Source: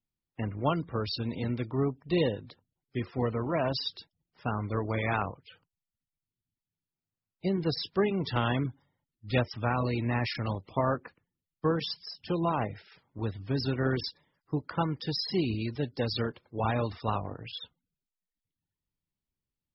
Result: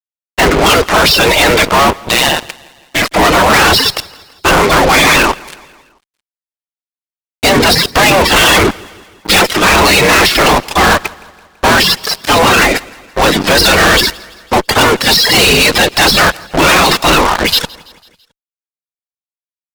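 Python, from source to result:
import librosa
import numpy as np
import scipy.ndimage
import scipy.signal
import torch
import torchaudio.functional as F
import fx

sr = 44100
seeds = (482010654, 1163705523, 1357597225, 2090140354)

p1 = fx.spec_gate(x, sr, threshold_db=-15, keep='weak')
p2 = fx.fuzz(p1, sr, gain_db=57.0, gate_db=-59.0)
p3 = fx.ring_mod(p2, sr, carrier_hz=fx.line((1.99, 47.0), (3.04, 200.0)), at=(1.99, 3.04), fade=0.02)
p4 = p3 + fx.echo_feedback(p3, sr, ms=166, feedback_pct=54, wet_db=-23.5, dry=0)
y = F.gain(torch.from_numpy(p4), 7.0).numpy()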